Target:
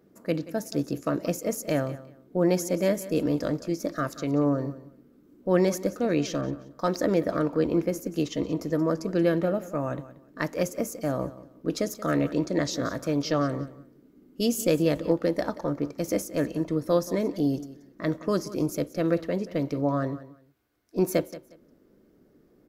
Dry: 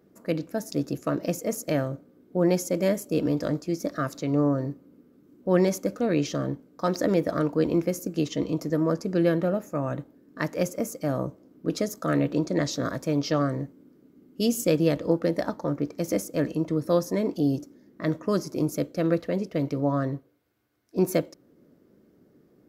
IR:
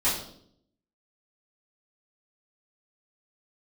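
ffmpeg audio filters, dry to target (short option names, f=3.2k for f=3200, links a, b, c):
-filter_complex "[0:a]asubboost=boost=4:cutoff=51,aecho=1:1:180|360:0.15|0.0329,asettb=1/sr,asplit=3[a][b][c];[a]atrim=end=6.414[d];[b]atrim=start=6.41:end=8.63,asetpts=PTS-STARTPTS,afade=t=in:d=0.004:c=qsin,afade=t=out:st=2.216:d=0.004:c=qsin,adynamicequalizer=threshold=0.00631:dfrequency=2600:dqfactor=0.7:tfrequency=2600:tqfactor=0.7:attack=5:release=100:ratio=0.375:range=2:mode=cutabove:tftype=highshelf[e];[c]atrim=start=8.626[f];[d][e]acrossfade=d=0.004:c1=hsin:c2=qsin[g];[g][f]acrossfade=d=0.004:c1=qsin:c2=hsin"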